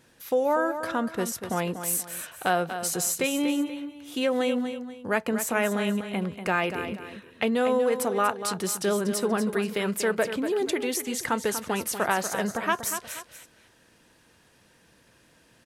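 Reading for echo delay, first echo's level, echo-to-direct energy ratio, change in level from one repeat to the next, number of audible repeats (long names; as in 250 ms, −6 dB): 240 ms, −9.5 dB, −9.0 dB, −9.5 dB, 2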